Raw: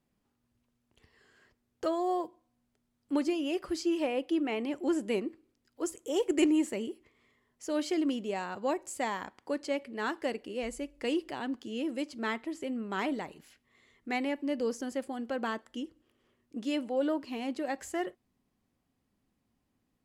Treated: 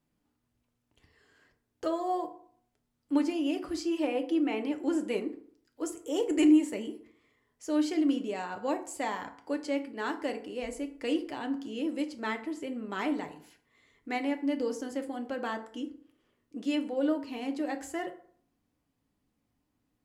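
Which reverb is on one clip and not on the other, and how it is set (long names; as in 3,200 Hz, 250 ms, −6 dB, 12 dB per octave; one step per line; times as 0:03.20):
feedback delay network reverb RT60 0.56 s, low-frequency decay 1×, high-frequency decay 0.55×, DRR 5.5 dB
level −1.5 dB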